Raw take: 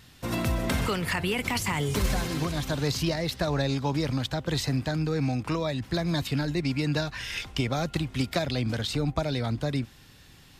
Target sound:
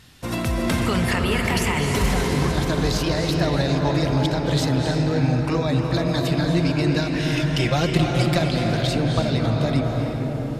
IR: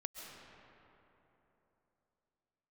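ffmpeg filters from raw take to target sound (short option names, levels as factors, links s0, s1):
-filter_complex "[0:a]asettb=1/sr,asplit=3[s0][s1][s2];[s0]atrim=end=7.474[s3];[s1]atrim=start=7.47:end=8.35,asetpts=PTS-STARTPTS,afade=t=in:d=0.004:c=qsin,afade=t=out:st=0.876:d=0.004:c=qsin,aecho=1:1:5.7:0.98,atrim=end_sample=38808[s4];[s2]atrim=start=8.346[s5];[s3][s4]acrossfade=d=0.004:c1=hsin:c2=qsin[s6];[s6][s5]acrossfade=d=0.004:c1=qsin:c2=hsin[s7];[1:a]atrim=start_sample=2205,asetrate=23814,aresample=44100[s8];[s7][s8]afir=irnorm=-1:irlink=0,volume=1.68"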